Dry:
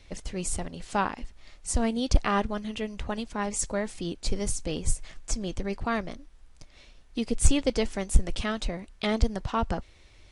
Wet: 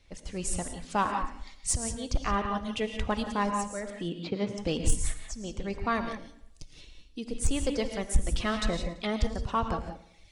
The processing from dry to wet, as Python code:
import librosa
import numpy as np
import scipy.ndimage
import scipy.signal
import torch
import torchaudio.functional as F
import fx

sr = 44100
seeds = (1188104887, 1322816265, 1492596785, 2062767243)

p1 = fx.tremolo_shape(x, sr, shape='saw_up', hz=0.57, depth_pct=85)
p2 = fx.dereverb_blind(p1, sr, rt60_s=1.3)
p3 = fx.cheby1_bandpass(p2, sr, low_hz=140.0, high_hz=3300.0, order=3, at=(3.9, 4.58))
p4 = fx.rev_gated(p3, sr, seeds[0], gate_ms=200, shape='rising', drr_db=6.0)
p5 = fx.spec_box(p4, sr, start_s=6.28, length_s=0.98, low_hz=480.0, high_hz=2500.0, gain_db=-7)
p6 = p5 + fx.echo_feedback(p5, sr, ms=112, feedback_pct=43, wet_db=-17.5, dry=0)
p7 = fx.dynamic_eq(p6, sr, hz=1100.0, q=4.9, threshold_db=-49.0, ratio=4.0, max_db=6)
p8 = np.clip(p7, -10.0 ** (-24.5 / 20.0), 10.0 ** (-24.5 / 20.0))
p9 = p7 + (p8 * 10.0 ** (-3.5 / 20.0))
y = fx.rider(p9, sr, range_db=3, speed_s=0.5)